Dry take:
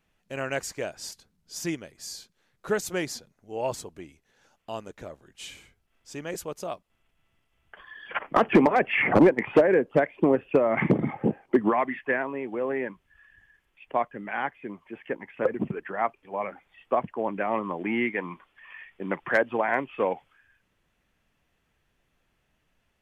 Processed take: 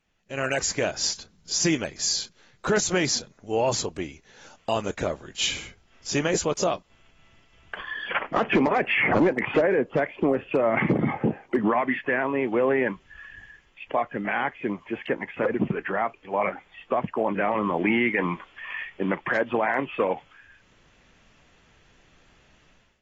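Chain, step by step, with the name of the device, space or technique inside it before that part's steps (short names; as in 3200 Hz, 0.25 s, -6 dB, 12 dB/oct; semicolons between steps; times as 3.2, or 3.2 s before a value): high shelf 3100 Hz +5 dB; low-bitrate web radio (AGC gain up to 15 dB; limiter -11.5 dBFS, peak gain reduction 10.5 dB; gain -2.5 dB; AAC 24 kbps 32000 Hz)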